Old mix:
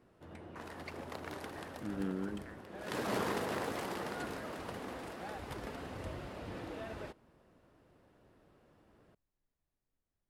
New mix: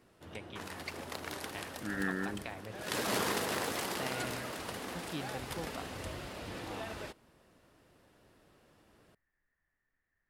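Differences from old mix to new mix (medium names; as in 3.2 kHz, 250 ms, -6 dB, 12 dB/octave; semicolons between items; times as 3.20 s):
first voice: remove Butterworth band-pass 1.6 kHz, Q 3; second voice: add resonant low-pass 1.8 kHz, resonance Q 13; master: add treble shelf 2.3 kHz +11.5 dB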